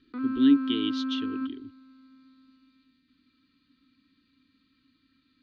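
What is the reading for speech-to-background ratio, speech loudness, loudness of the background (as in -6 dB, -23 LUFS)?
5.0 dB, -26.5 LUFS, -31.5 LUFS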